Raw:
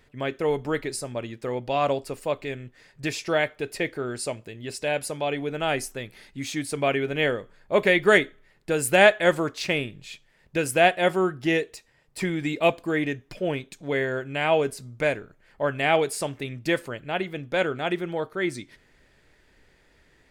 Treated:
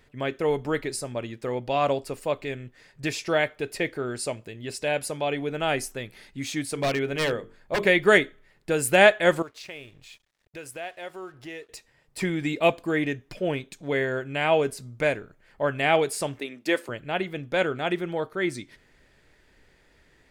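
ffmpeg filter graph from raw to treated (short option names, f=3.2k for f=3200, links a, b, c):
-filter_complex "[0:a]asettb=1/sr,asplit=3[a][b][c];[a]atrim=end=6.654[d];[b]atrim=start=6.65:end=7.86,asetpts=PTS-STARTPTS,afade=t=in:d=0.004:c=qsin,afade=t=out:st=1.206:d=0.004:c=qsin,bandreject=f=50:t=h:w=6,bandreject=f=100:t=h:w=6,bandreject=f=150:t=h:w=6,bandreject=f=200:t=h:w=6,bandreject=f=250:t=h:w=6,bandreject=f=300:t=h:w=6,bandreject=f=350:t=h:w=6,bandreject=f=400:t=h:w=6,bandreject=f=450:t=h:w=6,aeval=exprs='0.119*(abs(mod(val(0)/0.119+3,4)-2)-1)':c=same[e];[c]atrim=start=7.856[f];[d][e]acrossfade=d=0.004:c1=hsin:c2=qsin[g];[g][f]acrossfade=d=0.004:c1=qsin:c2=hsin,asettb=1/sr,asplit=3[h][i][j];[h]atrim=end=9.424[k];[i]atrim=start=9.42:end=11.69,asetpts=PTS-STARTPTS,afade=t=in:d=0.004:c=qsin,afade=t=out:st=2.266:d=0.004:c=qsin,equalizer=f=200:t=o:w=0.88:g=-11,acompressor=threshold=-46dB:ratio=2:attack=3.2:release=140:knee=1:detection=peak,aeval=exprs='sgn(val(0))*max(abs(val(0))-0.00112,0)':c=same[l];[j]atrim=start=11.686[m];[k][l]acrossfade=d=0.004:c1=hsin:c2=qsin[n];[n][m]acrossfade=d=0.004:c1=qsin:c2=hsin,asettb=1/sr,asplit=3[o][p][q];[o]atrim=end=16.404[r];[p]atrim=start=16.4:end=16.89,asetpts=PTS-STARTPTS,afade=t=in:d=0.004:c=qsin,afade=t=out:st=0.486:d=0.004:c=qsin,agate=range=-33dB:threshold=-44dB:ratio=3:release=100:detection=peak,highpass=f=240:w=0.5412,highpass=f=240:w=1.3066[s];[q]atrim=start=16.886[t];[r][s]acrossfade=d=0.004:c1=hsin:c2=qsin[u];[u][t]acrossfade=d=0.004:c1=qsin:c2=hsin"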